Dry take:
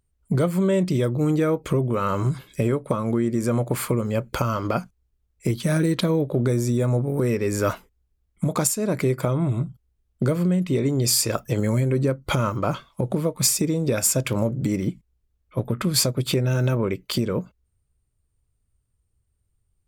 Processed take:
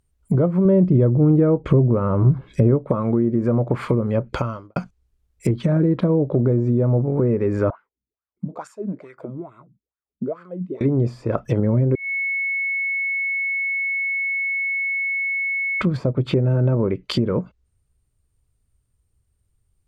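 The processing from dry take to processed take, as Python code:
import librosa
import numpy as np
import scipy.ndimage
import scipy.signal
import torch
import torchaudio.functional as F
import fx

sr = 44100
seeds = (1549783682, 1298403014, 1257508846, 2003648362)

y = fx.low_shelf(x, sr, hz=190.0, db=6.5, at=(0.65, 2.79))
y = fx.studio_fade_out(y, sr, start_s=4.23, length_s=0.53)
y = fx.wah_lfo(y, sr, hz=2.3, low_hz=200.0, high_hz=1500.0, q=5.8, at=(7.7, 10.81))
y = fx.edit(y, sr, fx.bleep(start_s=11.95, length_s=3.86, hz=2200.0, db=-23.5), tone=tone)
y = fx.env_lowpass_down(y, sr, base_hz=820.0, full_db=-18.0)
y = y * librosa.db_to_amplitude(3.5)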